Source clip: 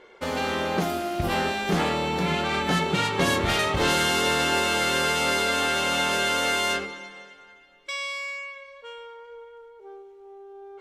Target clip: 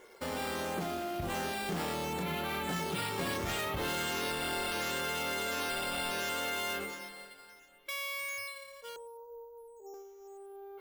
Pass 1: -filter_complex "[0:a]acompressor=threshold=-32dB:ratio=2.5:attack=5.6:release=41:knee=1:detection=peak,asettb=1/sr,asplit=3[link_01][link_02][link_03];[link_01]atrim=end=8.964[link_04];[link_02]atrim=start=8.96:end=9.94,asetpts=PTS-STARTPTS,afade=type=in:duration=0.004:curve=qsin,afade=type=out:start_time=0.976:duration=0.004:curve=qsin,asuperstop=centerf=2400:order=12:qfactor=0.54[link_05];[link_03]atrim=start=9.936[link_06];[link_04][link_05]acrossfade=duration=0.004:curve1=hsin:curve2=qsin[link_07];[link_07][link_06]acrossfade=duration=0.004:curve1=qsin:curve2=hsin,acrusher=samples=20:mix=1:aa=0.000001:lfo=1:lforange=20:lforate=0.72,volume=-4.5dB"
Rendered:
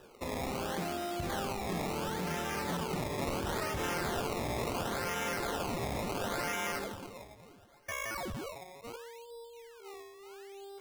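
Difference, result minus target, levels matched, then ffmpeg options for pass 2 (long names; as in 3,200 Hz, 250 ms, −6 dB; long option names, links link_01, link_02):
sample-and-hold swept by an LFO: distortion +11 dB
-filter_complex "[0:a]acompressor=threshold=-32dB:ratio=2.5:attack=5.6:release=41:knee=1:detection=peak,asettb=1/sr,asplit=3[link_01][link_02][link_03];[link_01]atrim=end=8.964[link_04];[link_02]atrim=start=8.96:end=9.94,asetpts=PTS-STARTPTS,afade=type=in:duration=0.004:curve=qsin,afade=type=out:start_time=0.976:duration=0.004:curve=qsin,asuperstop=centerf=2400:order=12:qfactor=0.54[link_05];[link_03]atrim=start=9.936[link_06];[link_04][link_05]acrossfade=duration=0.004:curve1=hsin:curve2=qsin[link_07];[link_07][link_06]acrossfade=duration=0.004:curve1=qsin:curve2=hsin,acrusher=samples=5:mix=1:aa=0.000001:lfo=1:lforange=5:lforate=0.72,volume=-4.5dB"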